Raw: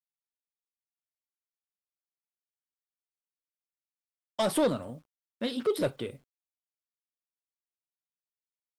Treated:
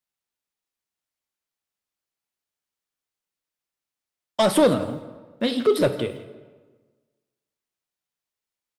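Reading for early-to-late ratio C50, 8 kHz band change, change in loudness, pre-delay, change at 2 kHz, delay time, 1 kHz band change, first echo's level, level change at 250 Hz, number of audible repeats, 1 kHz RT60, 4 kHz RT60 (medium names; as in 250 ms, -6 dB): 11.5 dB, +6.5 dB, +8.5 dB, 20 ms, +8.5 dB, 166 ms, +8.5 dB, -18.5 dB, +9.0 dB, 1, 1.4 s, 0.95 s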